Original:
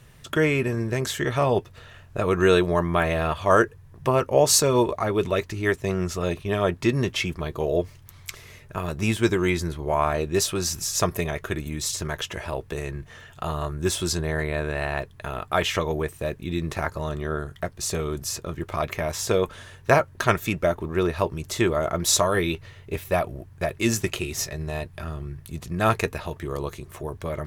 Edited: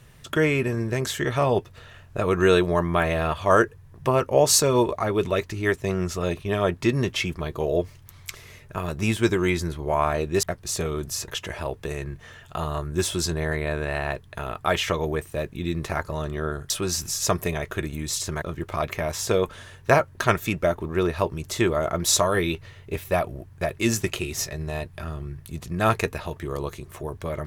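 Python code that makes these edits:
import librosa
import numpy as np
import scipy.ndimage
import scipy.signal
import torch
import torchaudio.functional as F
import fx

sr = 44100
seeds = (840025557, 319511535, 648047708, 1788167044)

y = fx.edit(x, sr, fx.swap(start_s=10.43, length_s=1.72, other_s=17.57, other_length_s=0.85), tone=tone)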